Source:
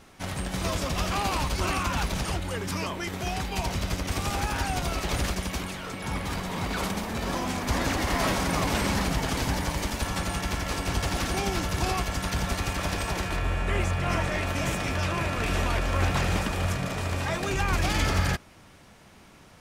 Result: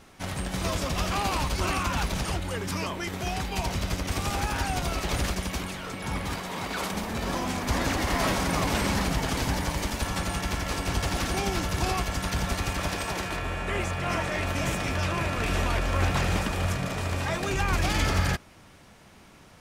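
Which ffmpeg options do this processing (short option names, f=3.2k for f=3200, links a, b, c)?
-filter_complex "[0:a]asettb=1/sr,asplit=3[a][b][c];[a]atrim=end=6.354[d];[b]atrim=start=6.35:end=6.93,asetpts=PTS-STARTPTS,afade=t=in:d=0.004:c=qsin,afade=t=out:st=0.576:d=0.004:c=qsin,lowshelf=f=160:g=-11.5[e];[c]atrim=start=6.926[f];[d][e]acrossfade=d=0.004:c1=hsin:c2=qsin[g];[g][f]acrossfade=d=0.004:c1=qsin:c2=hsin,asettb=1/sr,asplit=3[h][i][j];[h]atrim=end=12.884[k];[i]atrim=start=12.88:end=14.38,asetpts=PTS-STARTPTS,afade=t=in:d=0.004:c=qsin,afade=t=out:st=1.496:d=0.004:c=qsin,lowshelf=f=100:g=-9[l];[j]atrim=start=14.376[m];[k][l]acrossfade=d=0.004:c1=hsin:c2=qsin[n];[n][m]acrossfade=d=0.004:c1=qsin:c2=hsin"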